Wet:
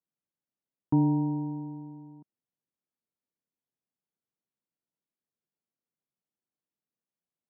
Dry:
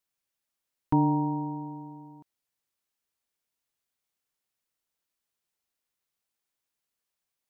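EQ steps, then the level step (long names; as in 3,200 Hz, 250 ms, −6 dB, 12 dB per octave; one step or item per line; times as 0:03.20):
resonant band-pass 170 Hz, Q 1.2
low-shelf EQ 150 Hz −11.5 dB
+7.5 dB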